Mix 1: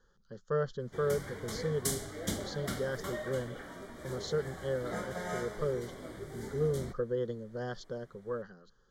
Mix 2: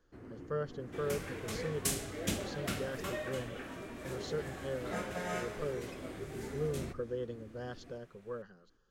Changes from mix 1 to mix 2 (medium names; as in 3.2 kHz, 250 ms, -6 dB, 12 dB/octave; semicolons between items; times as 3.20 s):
speech -5.0 dB; first sound: unmuted; master: remove Butterworth band-stop 2.6 kHz, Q 3